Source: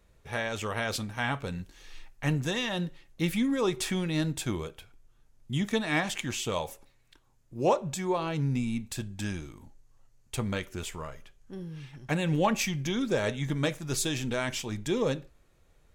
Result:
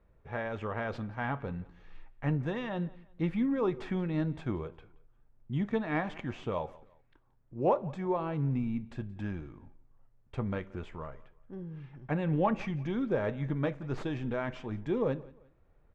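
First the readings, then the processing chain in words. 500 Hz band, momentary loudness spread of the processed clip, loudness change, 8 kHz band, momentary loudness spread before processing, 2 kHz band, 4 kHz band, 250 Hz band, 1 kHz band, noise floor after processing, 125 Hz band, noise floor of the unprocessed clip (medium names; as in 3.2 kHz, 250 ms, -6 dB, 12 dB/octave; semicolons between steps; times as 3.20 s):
-2.0 dB, 14 LU, -3.0 dB, under -30 dB, 13 LU, -7.0 dB, -17.0 dB, -2.0 dB, -2.5 dB, -65 dBFS, -2.0 dB, -64 dBFS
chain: tracing distortion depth 0.04 ms; low-pass 1.5 kHz 12 dB/octave; on a send: feedback delay 176 ms, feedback 33%, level -22 dB; on the sum: trim -2 dB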